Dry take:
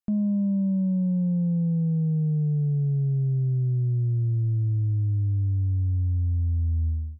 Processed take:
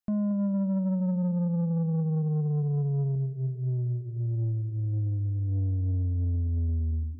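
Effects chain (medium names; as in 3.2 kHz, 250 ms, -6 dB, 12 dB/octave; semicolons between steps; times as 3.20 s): band-passed feedback delay 227 ms, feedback 79%, band-pass 300 Hz, level -11.5 dB; 3.15–5.49 s: flange 1.6 Hz, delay 7.9 ms, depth 5.5 ms, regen -28%; saturation -23.5 dBFS, distortion -17 dB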